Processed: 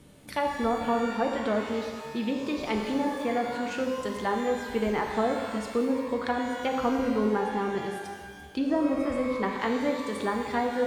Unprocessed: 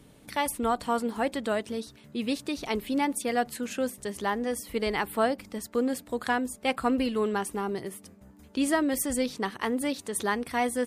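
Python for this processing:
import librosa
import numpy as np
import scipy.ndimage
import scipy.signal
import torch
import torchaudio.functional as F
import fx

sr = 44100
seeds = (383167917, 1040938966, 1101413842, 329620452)

y = fx.env_lowpass_down(x, sr, base_hz=790.0, full_db=-22.0)
y = fx.rev_shimmer(y, sr, seeds[0], rt60_s=1.5, semitones=12, shimmer_db=-8, drr_db=2.0)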